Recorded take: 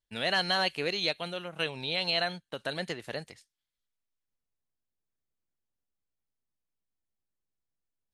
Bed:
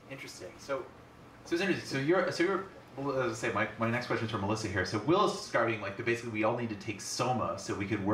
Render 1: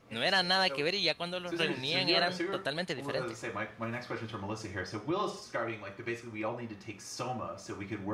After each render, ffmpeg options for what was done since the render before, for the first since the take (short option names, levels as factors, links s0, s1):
-filter_complex "[1:a]volume=0.501[s0];[0:a][s0]amix=inputs=2:normalize=0"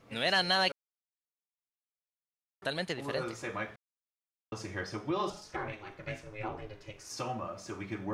-filter_complex "[0:a]asettb=1/sr,asplit=3[s0][s1][s2];[s0]atrim=end=5.304[s3];[s1]atrim=start=5.3:end=7.1,asetpts=PTS-STARTPTS,afade=t=in:d=0.004:c=qsin,afade=t=out:st=1.796:d=0.004:c=qsin,aeval=exprs='val(0)*sin(2*PI*210*n/s)':c=same[s4];[s2]atrim=start=7.096[s5];[s3][s4]acrossfade=d=0.004:c1=hsin:c2=qsin[s6];[s6][s5]acrossfade=d=0.004:c1=qsin:c2=hsin,asplit=5[s7][s8][s9][s10][s11];[s7]atrim=end=0.72,asetpts=PTS-STARTPTS,afade=t=out:st=0.716:d=0.004:c=hsin[s12];[s8]atrim=start=0.72:end=2.62,asetpts=PTS-STARTPTS,volume=0[s13];[s9]atrim=start=2.62:end=3.76,asetpts=PTS-STARTPTS,afade=t=in:d=0.004:c=hsin,afade=t=out:st=1.136:d=0.004:c=hsin[s14];[s10]atrim=start=3.76:end=4.52,asetpts=PTS-STARTPTS,volume=0[s15];[s11]atrim=start=4.52,asetpts=PTS-STARTPTS,afade=t=in:d=0.004:c=hsin[s16];[s12][s13][s14][s15][s16]concat=n=5:v=0:a=1"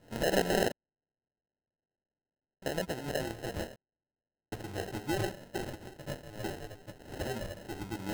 -af "acrusher=samples=38:mix=1:aa=0.000001"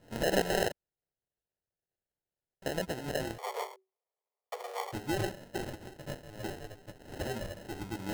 -filter_complex "[0:a]asettb=1/sr,asplit=3[s0][s1][s2];[s0]atrim=end=0.414[s3];[s1]atrim=start=0.41:end=2.66,asetpts=PTS-STARTPTS,afade=t=in:d=0.004:c=qsin,afade=t=out:st=2.246:d=0.004:c=qsin,equalizer=f=250:w=2.5:g=-11[s4];[s2]atrim=start=2.656[s5];[s3][s4]acrossfade=d=0.004:c1=hsin:c2=qsin[s6];[s6][s5]acrossfade=d=0.004:c1=qsin:c2=hsin,asettb=1/sr,asplit=3[s7][s8][s9];[s7]atrim=end=3.384[s10];[s8]atrim=start=3.38:end=4.93,asetpts=PTS-STARTPTS,afade=t=in:d=0.004:c=qsin,afade=t=out:st=1.546:d=0.004:c=qsin,afreqshift=380[s11];[s9]atrim=start=4.926[s12];[s10][s11]acrossfade=d=0.004:c1=hsin:c2=qsin[s13];[s13][s12]acrossfade=d=0.004:c1=qsin:c2=hsin,asettb=1/sr,asplit=3[s14][s15][s16];[s14]atrim=end=6.084[s17];[s15]atrim=start=6.08:end=7.2,asetpts=PTS-STARTPTS,afade=t=in:d=0.004:c=qsin,afade=t=out:st=1.116:d=0.004:c=qsin,aeval=exprs='if(lt(val(0),0),0.708*val(0),val(0))':c=same[s18];[s16]atrim=start=7.196[s19];[s17][s18]acrossfade=d=0.004:c1=hsin:c2=qsin[s20];[s20][s19]acrossfade=d=0.004:c1=qsin:c2=hsin"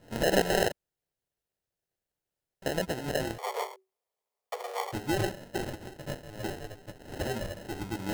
-af "volume=1.5"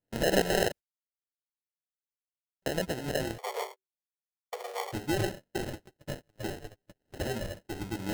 -af "agate=range=0.0282:threshold=0.0112:ratio=16:detection=peak,equalizer=f=1000:t=o:w=0.98:g=-3.5"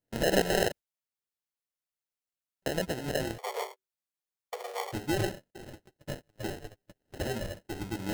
-filter_complex "[0:a]asplit=2[s0][s1];[s0]atrim=end=5.51,asetpts=PTS-STARTPTS,afade=t=out:st=5.506:d=0.004:c=hsin:silence=0.112202[s2];[s1]atrim=start=5.51,asetpts=PTS-STARTPTS,afade=t=in:d=0.62:silence=0.112202[s3];[s2][s3]concat=n=2:v=0:a=1"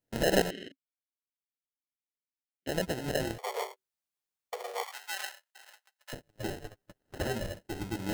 -filter_complex "[0:a]asplit=3[s0][s1][s2];[s0]afade=t=out:st=0.49:d=0.02[s3];[s1]asplit=3[s4][s5][s6];[s4]bandpass=f=270:t=q:w=8,volume=1[s7];[s5]bandpass=f=2290:t=q:w=8,volume=0.501[s8];[s6]bandpass=f=3010:t=q:w=8,volume=0.355[s9];[s7][s8][s9]amix=inputs=3:normalize=0,afade=t=in:st=0.49:d=0.02,afade=t=out:st=2.67:d=0.02[s10];[s2]afade=t=in:st=2.67:d=0.02[s11];[s3][s10][s11]amix=inputs=3:normalize=0,asettb=1/sr,asplit=3[s12][s13][s14];[s12]atrim=end=4.834[s15];[s13]atrim=start=4.83:end=6.13,asetpts=PTS-STARTPTS,afade=t=in:d=0.004:c=qsin,afade=t=out:st=1.296:d=0.004:c=qsin,highpass=f=940:w=0.5412,highpass=f=940:w=1.3066[s16];[s14]atrim=start=6.126[s17];[s15][s16]acrossfade=d=0.004:c1=hsin:c2=qsin[s18];[s18][s17]acrossfade=d=0.004:c1=qsin:c2=hsin,asettb=1/sr,asplit=3[s19][s20][s21];[s19]atrim=end=6.654[s22];[s20]atrim=start=6.65:end=7.34,asetpts=PTS-STARTPTS,afade=t=in:d=0.004:c=qsin,afade=t=out:st=0.686:d=0.004:c=qsin,equalizer=f=1200:t=o:w=0.77:g=6[s23];[s21]atrim=start=7.336[s24];[s22][s23]acrossfade=d=0.004:c1=hsin:c2=qsin[s25];[s25][s24]acrossfade=d=0.004:c1=qsin:c2=hsin"